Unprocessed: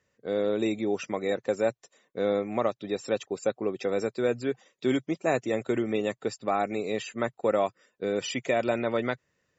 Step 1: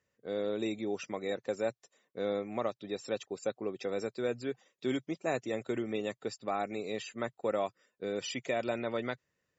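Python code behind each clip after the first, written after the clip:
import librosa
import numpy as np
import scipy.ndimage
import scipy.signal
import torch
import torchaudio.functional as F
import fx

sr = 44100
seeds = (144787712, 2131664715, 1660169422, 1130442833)

y = fx.dynamic_eq(x, sr, hz=4500.0, q=1.2, threshold_db=-51.0, ratio=4.0, max_db=4)
y = y * librosa.db_to_amplitude(-7.0)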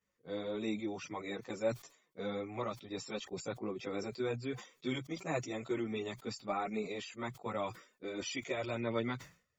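y = x + 0.34 * np.pad(x, (int(0.9 * sr / 1000.0), 0))[:len(x)]
y = fx.chorus_voices(y, sr, voices=4, hz=0.35, base_ms=15, depth_ms=4.6, mix_pct=70)
y = fx.sustainer(y, sr, db_per_s=140.0)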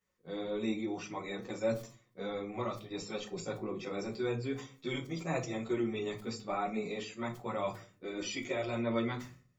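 y = fx.room_shoebox(x, sr, seeds[0], volume_m3=220.0, walls='furnished', distance_m=1.0)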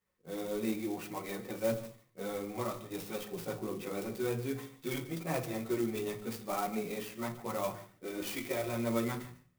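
y = x + 10.0 ** (-16.0 / 20.0) * np.pad(x, (int(146 * sr / 1000.0), 0))[:len(x)]
y = fx.clock_jitter(y, sr, seeds[1], jitter_ms=0.047)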